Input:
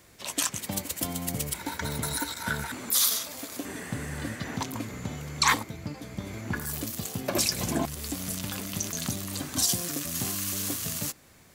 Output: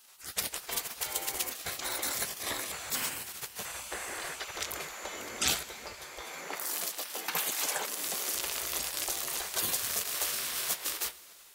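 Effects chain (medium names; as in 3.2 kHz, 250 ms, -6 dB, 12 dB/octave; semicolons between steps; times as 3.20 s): spectral gate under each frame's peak -15 dB weak; 6.21–8.34 s: high-pass 170 Hz 24 dB/octave; plate-style reverb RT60 3 s, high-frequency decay 0.9×, DRR 16.5 dB; transformer saturation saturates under 1.8 kHz; trim +4 dB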